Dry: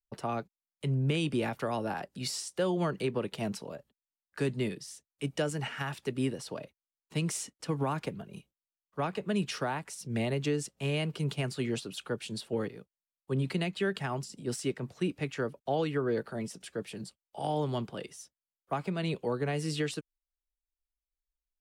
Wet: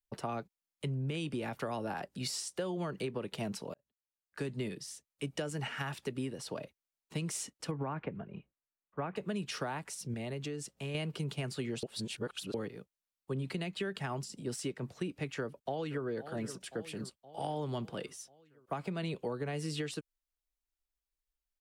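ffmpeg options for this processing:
ffmpeg -i in.wav -filter_complex "[0:a]asettb=1/sr,asplit=3[link_01][link_02][link_03];[link_01]atrim=end=7.714[link_04];[link_02]atrim=start=7.71:end=9.16,asetpts=PTS-STARTPTS,afade=type=in:duration=0.004:curve=qsin,afade=type=out:start_time=1.446:duration=0.004:curve=qsin,lowpass=frequency=2400:width=0.5412,lowpass=frequency=2400:width=1.3066[link_05];[link_03]atrim=start=9.156[link_06];[link_04][link_05]acrossfade=duration=0.004:curve1=hsin:curve2=qsin[link_07];[link_07][link_06]acrossfade=duration=0.004:curve1=qsin:curve2=hsin,asettb=1/sr,asplit=3[link_08][link_09][link_10];[link_08]atrim=end=10.144[link_11];[link_09]atrim=start=10.14:end=10.95,asetpts=PTS-STARTPTS,afade=type=in:duration=0.004:curve=qsin,afade=type=out:start_time=0.806:duration=0.004:curve=qsin,acompressor=threshold=-41dB:ratio=2:attack=3.2:release=140:knee=1:detection=peak[link_12];[link_10]atrim=start=10.946[link_13];[link_11][link_12]acrossfade=duration=0.004:curve1=hsin:curve2=qsin[link_14];[link_14][link_13]acrossfade=duration=0.004:curve1=qsin:curve2=hsin,asplit=2[link_15][link_16];[link_16]afade=type=in:start_time=15.33:duration=0.01,afade=type=out:start_time=16.05:duration=0.01,aecho=0:1:520|1040|1560|2080|2600|3120:0.149624|0.0897741|0.0538645|0.0323187|0.0193912|0.0116347[link_17];[link_15][link_17]amix=inputs=2:normalize=0,asplit=4[link_18][link_19][link_20][link_21];[link_18]atrim=end=3.74,asetpts=PTS-STARTPTS,afade=type=out:start_time=3.736:duration=0.004:curve=hsin[link_22];[link_19]atrim=start=3.74:end=11.832,asetpts=PTS-STARTPTS,afade=type=in:duration=0.94[link_23];[link_20]atrim=start=11.828:end=12.542,asetpts=PTS-STARTPTS,areverse[link_24];[link_21]atrim=start=12.538[link_25];[link_22][link_23]concat=n=2:v=0:a=1[link_26];[link_26][link_24]acrossfade=duration=0.004:curve1=hsin:curve2=hsin[link_27];[link_27][link_25]acrossfade=duration=0.004:curve1=hsin:curve2=hsin,acompressor=threshold=-33dB:ratio=6" out.wav

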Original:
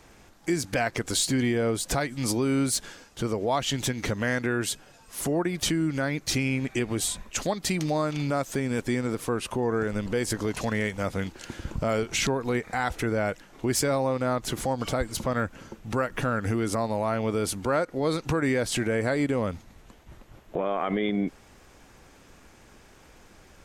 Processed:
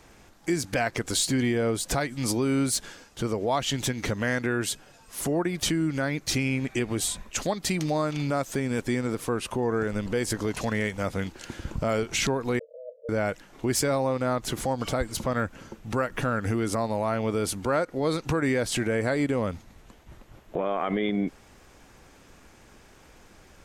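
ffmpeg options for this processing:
ffmpeg -i in.wav -filter_complex "[0:a]asettb=1/sr,asplit=3[link_01][link_02][link_03];[link_01]atrim=end=12.594[link_04];[link_02]atrim=start=12.59:end=13.09,asetpts=PTS-STARTPTS,afade=type=in:duration=0.004:curve=qsin,afade=type=out:start_time=0.496:duration=0.004:curve=qsin,asuperpass=centerf=540:order=20:qfactor=2.9[link_05];[link_03]atrim=start=13.086[link_06];[link_04][link_05]acrossfade=duration=0.004:curve1=hsin:curve2=qsin[link_07];[link_07][link_06]acrossfade=duration=0.004:curve1=qsin:curve2=hsin" out.wav

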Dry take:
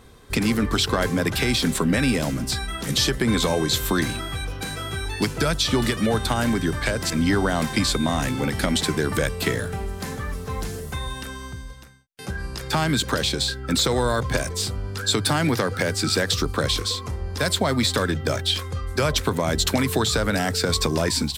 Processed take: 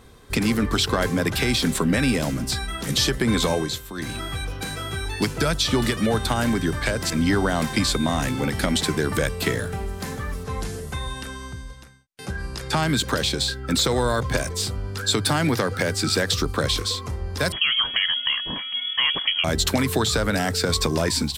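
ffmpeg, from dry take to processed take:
ffmpeg -i in.wav -filter_complex "[0:a]asplit=3[link_01][link_02][link_03];[link_01]afade=type=out:start_time=10.43:duration=0.02[link_04];[link_02]lowpass=frequency=12000:width=0.5412,lowpass=frequency=12000:width=1.3066,afade=type=in:start_time=10.43:duration=0.02,afade=type=out:start_time=12.81:duration=0.02[link_05];[link_03]afade=type=in:start_time=12.81:duration=0.02[link_06];[link_04][link_05][link_06]amix=inputs=3:normalize=0,asettb=1/sr,asplit=3[link_07][link_08][link_09];[link_07]atrim=end=17.524[link_10];[link_08]atrim=start=17.52:end=19.44,asetpts=PTS-STARTPTS,afade=type=in:duration=0.004:curve=qsin,afade=type=out:start_time=1.916:duration=0.004:curve=qsin,lowpass=frequency=2900:width_type=q:width=0.5098,lowpass=frequency=2900:width_type=q:width=0.6013,lowpass=frequency=2900:width_type=q:width=0.9,lowpass=frequency=2900:width_type=q:width=2.563,afreqshift=-3400[link_11];[link_09]atrim=start=19.436[link_12];[link_10][link_11]acrossfade=duration=0.004:curve1=hsin:curve2=qsin[link_13];[link_13][link_12]acrossfade=duration=0.004:curve1=qsin:curve2=hsin,asplit=3[link_14][link_15][link_16];[link_14]atrim=end=3.83,asetpts=PTS-STARTPTS,afade=type=out:start_time=3.53:duration=0.3:silence=0.199526[link_17];[link_15]atrim=start=3.83:end=3.93,asetpts=PTS-STARTPTS,volume=-14dB[link_18];[link_16]atrim=start=3.93,asetpts=PTS-STARTPTS,afade=type=in:duration=0.3:silence=0.199526[link_19];[link_17][link_18][link_19]concat=n=3:v=0:a=1" out.wav

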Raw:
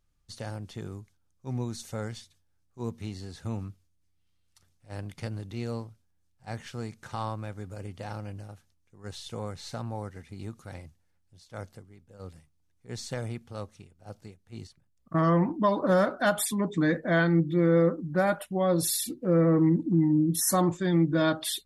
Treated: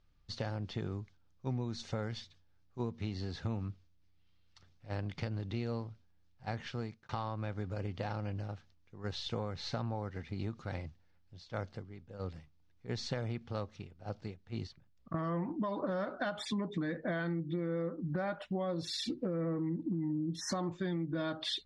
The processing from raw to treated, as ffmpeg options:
ffmpeg -i in.wav -filter_complex "[0:a]asplit=2[link_01][link_02];[link_01]atrim=end=7.09,asetpts=PTS-STARTPTS,afade=type=out:start_time=6.61:duration=0.48[link_03];[link_02]atrim=start=7.09,asetpts=PTS-STARTPTS,afade=type=in:duration=0.004:curve=hsin[link_04];[link_03][link_04]concat=n=2:v=0:a=1,lowpass=frequency=5000:width=0.5412,lowpass=frequency=5000:width=1.3066,alimiter=limit=-23.5dB:level=0:latency=1:release=408,acompressor=threshold=-36dB:ratio=6,volume=3.5dB" out.wav

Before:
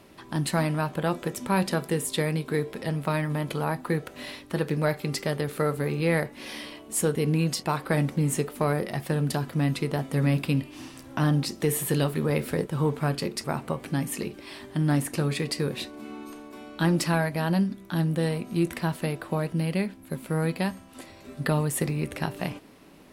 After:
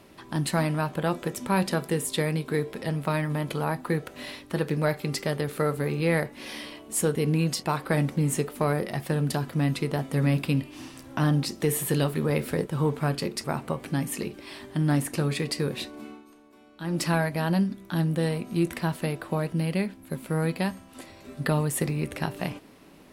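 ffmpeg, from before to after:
ffmpeg -i in.wav -filter_complex "[0:a]asplit=3[link_01][link_02][link_03];[link_01]atrim=end=16.23,asetpts=PTS-STARTPTS,afade=type=out:start_time=16.02:duration=0.21:silence=0.251189[link_04];[link_02]atrim=start=16.23:end=16.84,asetpts=PTS-STARTPTS,volume=-12dB[link_05];[link_03]atrim=start=16.84,asetpts=PTS-STARTPTS,afade=type=in:duration=0.21:silence=0.251189[link_06];[link_04][link_05][link_06]concat=n=3:v=0:a=1" out.wav

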